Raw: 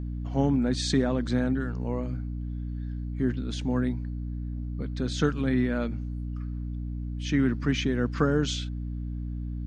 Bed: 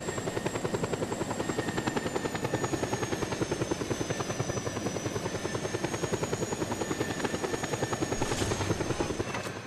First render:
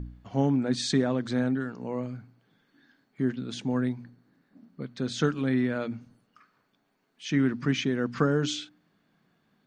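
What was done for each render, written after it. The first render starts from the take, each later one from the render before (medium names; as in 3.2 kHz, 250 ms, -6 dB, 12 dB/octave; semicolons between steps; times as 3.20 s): de-hum 60 Hz, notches 5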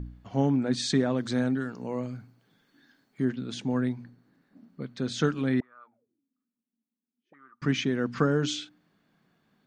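1.16–3.25 s: tone controls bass 0 dB, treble +6 dB; 5.60–7.62 s: auto-wah 230–1200 Hz, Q 21, up, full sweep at -25 dBFS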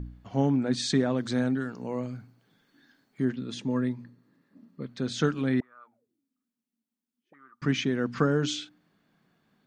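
3.37–4.89 s: comb of notches 750 Hz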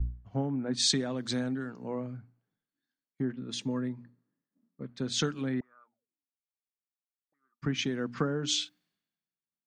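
compression 5:1, threshold -29 dBFS, peak gain reduction 10 dB; three bands expanded up and down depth 100%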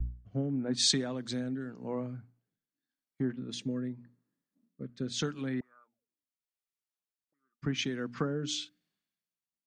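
rotary cabinet horn 0.85 Hz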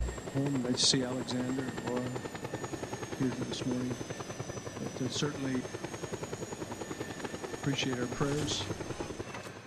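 add bed -8 dB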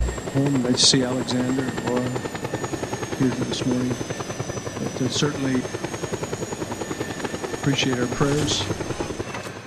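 trim +11 dB; peak limiter -2 dBFS, peak gain reduction 2.5 dB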